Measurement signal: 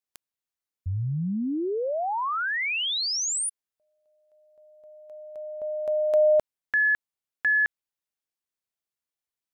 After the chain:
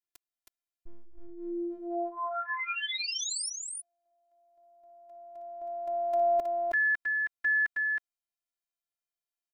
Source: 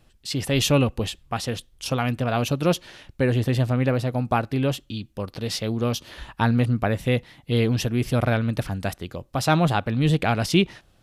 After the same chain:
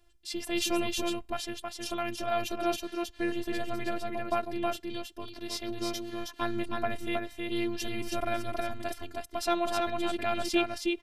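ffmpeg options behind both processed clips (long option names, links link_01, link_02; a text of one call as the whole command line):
ffmpeg -i in.wav -af "afftfilt=real='hypot(re,im)*cos(PI*b)':imag='0':win_size=512:overlap=0.75,aecho=1:1:318:0.668,volume=-4dB" out.wav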